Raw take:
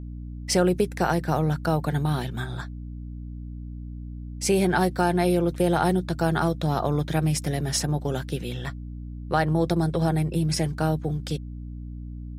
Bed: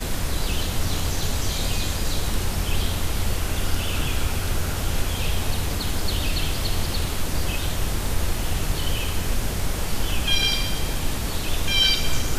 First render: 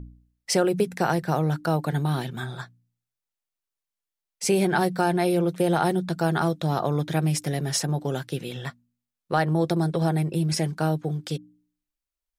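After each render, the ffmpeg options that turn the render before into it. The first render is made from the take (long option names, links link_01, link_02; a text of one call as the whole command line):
ffmpeg -i in.wav -af "bandreject=frequency=60:width_type=h:width=4,bandreject=frequency=120:width_type=h:width=4,bandreject=frequency=180:width_type=h:width=4,bandreject=frequency=240:width_type=h:width=4,bandreject=frequency=300:width_type=h:width=4" out.wav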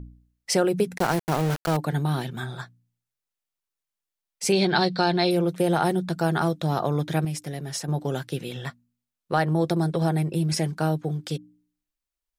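ffmpeg -i in.wav -filter_complex "[0:a]asettb=1/sr,asplit=3[link_01][link_02][link_03];[link_01]atrim=end=0.984[link_04];[link_02]atrim=start=0.98:end=1.77,asetpts=PTS-STARTPTS,afade=type=in:duration=0.004:curve=qsin,afade=type=out:start_time=0.786:duration=0.004:curve=qsin,aeval=exprs='val(0)*gte(abs(val(0)),0.0501)':channel_layout=same[link_05];[link_03]atrim=start=1.766[link_06];[link_04][link_05]acrossfade=duration=0.004:curve1=hsin:curve2=qsin[link_07];[link_07][link_06]acrossfade=duration=0.004:curve1=qsin:curve2=hsin,asettb=1/sr,asplit=3[link_08][link_09][link_10];[link_08]atrim=end=4.524[link_11];[link_09]atrim=start=4.52:end=5.31,asetpts=PTS-STARTPTS,afade=type=in:duration=0.004:curve=qsin,afade=type=out:start_time=0.786:duration=0.004:curve=qsin,lowpass=frequency=4200:width_type=q:width=5.3[link_12];[link_10]atrim=start=5.306[link_13];[link_11][link_12]acrossfade=duration=0.004:curve1=hsin:curve2=qsin[link_14];[link_14][link_13]acrossfade=duration=0.004:curve1=qsin:curve2=hsin,asplit=3[link_15][link_16][link_17];[link_15]atrim=end=7.252[link_18];[link_16]atrim=start=7.248:end=7.882,asetpts=PTS-STARTPTS,volume=-6dB[link_19];[link_17]atrim=start=7.878[link_20];[link_18][link_19]acrossfade=duration=0.004:curve1=hsin:curve2=hsin[link_21];[link_21][link_20]acrossfade=duration=0.004:curve1=hsin:curve2=hsin" out.wav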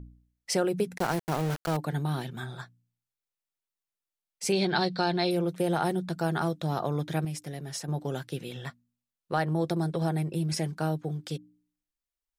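ffmpeg -i in.wav -af "volume=-5dB" out.wav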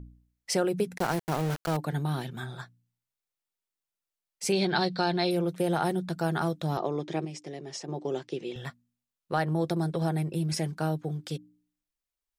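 ffmpeg -i in.wav -filter_complex "[0:a]asettb=1/sr,asplit=3[link_01][link_02][link_03];[link_01]atrim=end=6.774[link_04];[link_02]atrim=start=6.77:end=8.56,asetpts=PTS-STARTPTS,afade=type=in:duration=0.004:curve=qsin,afade=type=out:start_time=1.786:duration=0.004:curve=qsin,highpass=220,equalizer=frequency=370:width_type=q:width=4:gain=9,equalizer=frequency=1500:width_type=q:width=4:gain=-9,equalizer=frequency=3900:width_type=q:width=4:gain=-4,lowpass=frequency=6900:width=0.5412,lowpass=frequency=6900:width=1.3066[link_05];[link_03]atrim=start=8.556[link_06];[link_04][link_05]acrossfade=duration=0.004:curve1=hsin:curve2=qsin[link_07];[link_07][link_06]acrossfade=duration=0.004:curve1=qsin:curve2=hsin" out.wav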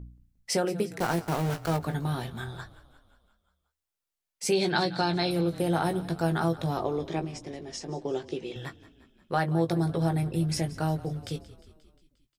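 ffmpeg -i in.wav -filter_complex "[0:a]asplit=2[link_01][link_02];[link_02]adelay=18,volume=-8dB[link_03];[link_01][link_03]amix=inputs=2:normalize=0,asplit=7[link_04][link_05][link_06][link_07][link_08][link_09][link_10];[link_05]adelay=177,afreqshift=-33,volume=-18dB[link_11];[link_06]adelay=354,afreqshift=-66,volume=-22.2dB[link_12];[link_07]adelay=531,afreqshift=-99,volume=-26.3dB[link_13];[link_08]adelay=708,afreqshift=-132,volume=-30.5dB[link_14];[link_09]adelay=885,afreqshift=-165,volume=-34.6dB[link_15];[link_10]adelay=1062,afreqshift=-198,volume=-38.8dB[link_16];[link_04][link_11][link_12][link_13][link_14][link_15][link_16]amix=inputs=7:normalize=0" out.wav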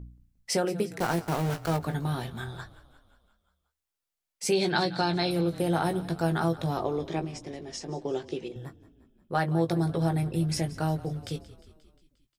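ffmpeg -i in.wav -filter_complex "[0:a]asettb=1/sr,asplit=3[link_01][link_02][link_03];[link_01]atrim=end=8.484[link_04];[link_02]atrim=start=8.48:end=9.35,asetpts=PTS-STARTPTS,afade=type=in:duration=0.004:curve=qsin,afade=type=out:start_time=0.866:duration=0.004:curve=qsin,equalizer=frequency=3000:width=0.4:gain=-15[link_05];[link_03]atrim=start=9.346[link_06];[link_04][link_05]acrossfade=duration=0.004:curve1=hsin:curve2=qsin[link_07];[link_07][link_06]acrossfade=duration=0.004:curve1=qsin:curve2=hsin" out.wav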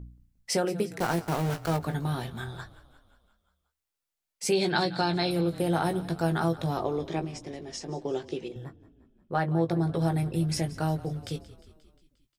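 ffmpeg -i in.wav -filter_complex "[0:a]asettb=1/sr,asplit=3[link_01][link_02][link_03];[link_01]atrim=end=4.494[link_04];[link_02]atrim=start=4.49:end=5.73,asetpts=PTS-STARTPTS,afade=type=in:duration=0.004:curve=qsin,afade=type=out:start_time=1.236:duration=0.004:curve=qsin,bandreject=frequency=6000:width=9.1[link_05];[link_03]atrim=start=5.726[link_06];[link_04][link_05]acrossfade=duration=0.004:curve1=hsin:curve2=qsin[link_07];[link_07][link_06]acrossfade=duration=0.004:curve1=qsin:curve2=hsin,asettb=1/sr,asplit=3[link_08][link_09][link_10];[link_08]atrim=end=8.644[link_11];[link_09]atrim=start=8.64:end=9.94,asetpts=PTS-STARTPTS,afade=type=in:duration=0.004:curve=qsin,afade=type=out:start_time=1.296:duration=0.004:curve=qsin,highshelf=frequency=3800:gain=-10.5[link_12];[link_10]atrim=start=9.936[link_13];[link_11][link_12]acrossfade=duration=0.004:curve1=hsin:curve2=qsin[link_14];[link_14][link_13]acrossfade=duration=0.004:curve1=qsin:curve2=hsin" out.wav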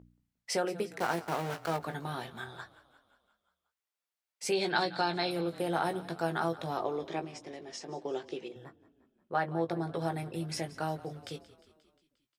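ffmpeg -i in.wav -af "highpass=frequency=560:poles=1,highshelf=frequency=4200:gain=-7.5" out.wav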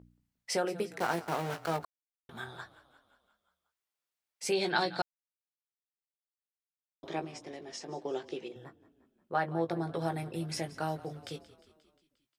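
ffmpeg -i in.wav -filter_complex "[0:a]asplit=5[link_01][link_02][link_03][link_04][link_05];[link_01]atrim=end=1.85,asetpts=PTS-STARTPTS,afade=type=out:start_time=1.846:duration=0.004:curve=hsin[link_06];[link_02]atrim=start=1.85:end=2.29,asetpts=PTS-STARTPTS,volume=0[link_07];[link_03]atrim=start=2.29:end=5.02,asetpts=PTS-STARTPTS,afade=type=in:duration=0.004:curve=hsin,afade=type=out:start_time=2.726:duration=0.004:curve=hsin[link_08];[link_04]atrim=start=5.02:end=7.03,asetpts=PTS-STARTPTS,volume=0[link_09];[link_05]atrim=start=7.03,asetpts=PTS-STARTPTS,afade=type=in:duration=0.004:curve=hsin[link_10];[link_06][link_07][link_08][link_09][link_10]concat=n=5:v=0:a=1" out.wav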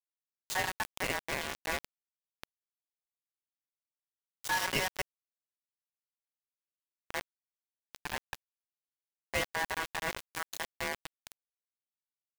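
ffmpeg -i in.wav -af "acrusher=bits=4:mix=0:aa=0.000001,aeval=exprs='val(0)*sin(2*PI*1300*n/s)':channel_layout=same" out.wav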